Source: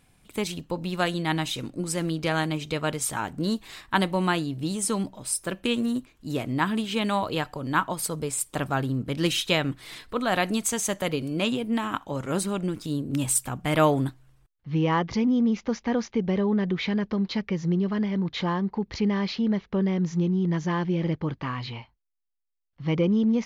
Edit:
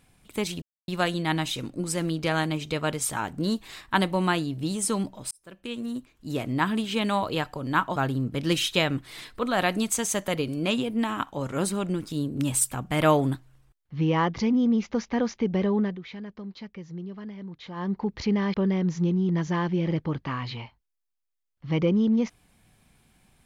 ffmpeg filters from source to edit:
ffmpeg -i in.wav -filter_complex "[0:a]asplit=8[link_01][link_02][link_03][link_04][link_05][link_06][link_07][link_08];[link_01]atrim=end=0.62,asetpts=PTS-STARTPTS,afade=type=out:start_time=0.616:duration=0.004:curve=hsin[link_09];[link_02]atrim=start=0.62:end=0.88,asetpts=PTS-STARTPTS,volume=0[link_10];[link_03]atrim=start=0.88:end=5.31,asetpts=PTS-STARTPTS,afade=type=in:duration=0.004:curve=hsin,afade=type=out:start_time=4.426:duration=0.004:curve=hsin[link_11];[link_04]atrim=start=5.31:end=7.962,asetpts=PTS-STARTPTS,afade=type=in:duration=1.15[link_12];[link_05]atrim=start=8.698:end=16.71,asetpts=PTS-STARTPTS,afade=type=out:start_time=7.792:duration=0.22:curve=qsin:silence=0.237137[link_13];[link_06]atrim=start=16.71:end=18.49,asetpts=PTS-STARTPTS,volume=-12.5dB[link_14];[link_07]atrim=start=18.49:end=19.282,asetpts=PTS-STARTPTS,afade=type=in:duration=0.22:curve=qsin:silence=0.237137[link_15];[link_08]atrim=start=19.698[link_16];[link_09][link_10][link_11][link_12]concat=n=4:v=0:a=1[link_17];[link_13][link_14][link_15]concat=n=3:v=0:a=1[link_18];[link_17][link_18]acrossfade=duration=0.004:curve1=hsin:curve2=hsin[link_19];[link_19][link_16]acrossfade=duration=0.004:curve1=hsin:curve2=hsin" out.wav

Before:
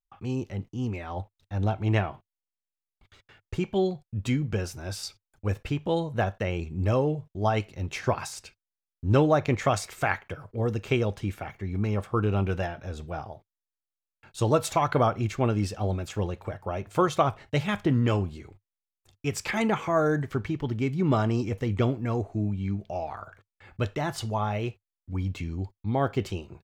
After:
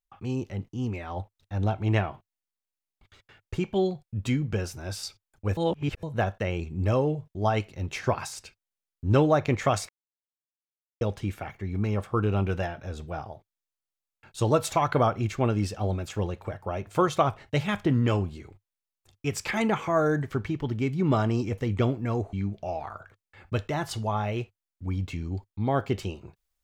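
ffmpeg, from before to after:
ffmpeg -i in.wav -filter_complex "[0:a]asplit=6[link_01][link_02][link_03][link_04][link_05][link_06];[link_01]atrim=end=5.572[link_07];[link_02]atrim=start=5.568:end=6.032,asetpts=PTS-STARTPTS,areverse[link_08];[link_03]atrim=start=6.028:end=9.89,asetpts=PTS-STARTPTS,afade=type=out:start_time=3.858:duration=0.004:curve=hsin[link_09];[link_04]atrim=start=9.89:end=11.01,asetpts=PTS-STARTPTS,volume=0[link_10];[link_05]atrim=start=11.01:end=22.332,asetpts=PTS-STARTPTS,afade=type=in:duration=0.004:curve=hsin[link_11];[link_06]atrim=start=22.598[link_12];[link_07][link_08]acrossfade=duration=0.004:curve1=hsin:curve2=hsin[link_13];[link_09][link_10][link_11]concat=n=3:v=0:a=1[link_14];[link_13][link_14]acrossfade=duration=0.004:curve1=hsin:curve2=hsin[link_15];[link_15][link_12]acrossfade=duration=0.004:curve1=hsin:curve2=hsin" out.wav

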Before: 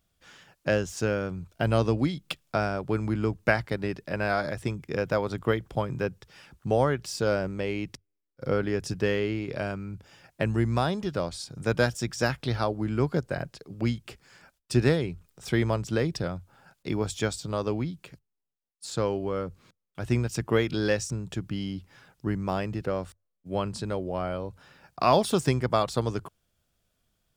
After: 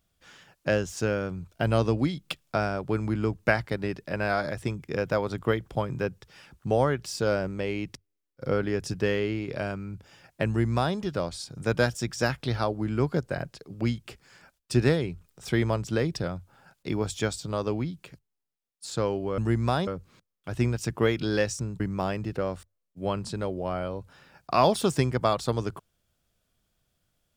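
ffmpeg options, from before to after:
ffmpeg -i in.wav -filter_complex "[0:a]asplit=4[link_01][link_02][link_03][link_04];[link_01]atrim=end=19.382[link_05];[link_02]atrim=start=10.468:end=10.962[link_06];[link_03]atrim=start=19.378:end=21.312[link_07];[link_04]atrim=start=22.288[link_08];[link_05][link_06]acrossfade=duration=0.004:curve1=hsin:curve2=hsin[link_09];[link_09][link_07]acrossfade=duration=0.004:curve1=hsin:curve2=hsin[link_10];[link_10][link_08]acrossfade=duration=0.004:curve1=hsin:curve2=hsin" out.wav

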